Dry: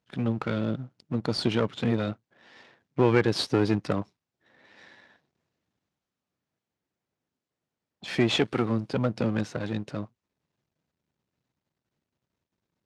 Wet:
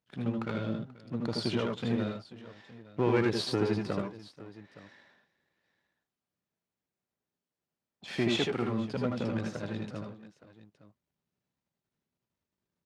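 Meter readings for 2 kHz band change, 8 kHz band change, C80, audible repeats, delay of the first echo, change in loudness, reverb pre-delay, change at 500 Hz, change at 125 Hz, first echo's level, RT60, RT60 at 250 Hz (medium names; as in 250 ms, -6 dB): -5.0 dB, -4.5 dB, no reverb, 3, 76 ms, -5.0 dB, no reverb, -4.5 dB, -5.5 dB, -5.0 dB, no reverb, no reverb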